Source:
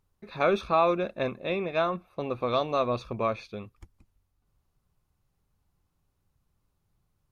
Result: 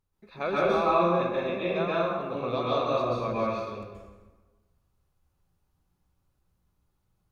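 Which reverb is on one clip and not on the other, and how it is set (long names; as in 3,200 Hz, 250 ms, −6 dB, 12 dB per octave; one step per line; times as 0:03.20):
dense smooth reverb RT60 1.3 s, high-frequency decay 0.7×, pre-delay 115 ms, DRR −7 dB
level −7 dB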